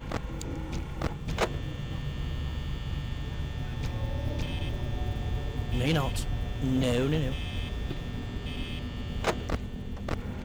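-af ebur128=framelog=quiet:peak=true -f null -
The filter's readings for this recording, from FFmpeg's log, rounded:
Integrated loudness:
  I:         -32.8 LUFS
  Threshold: -42.8 LUFS
Loudness range:
  LRA:         4.3 LU
  Threshold: -52.3 LUFS
  LRA low:   -34.6 LUFS
  LRA high:  -30.3 LUFS
True peak:
  Peak:      -18.9 dBFS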